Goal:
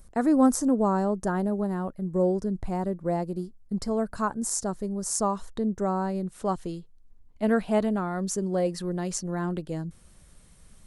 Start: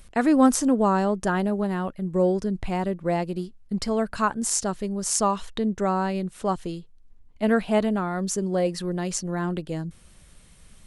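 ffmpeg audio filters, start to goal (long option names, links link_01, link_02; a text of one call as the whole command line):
ffmpeg -i in.wav -af "asetnsamples=nb_out_samples=441:pad=0,asendcmd='6.27 equalizer g -5.5',equalizer=frequency=2800:width_type=o:width=1.3:gain=-14.5,volume=-2dB" out.wav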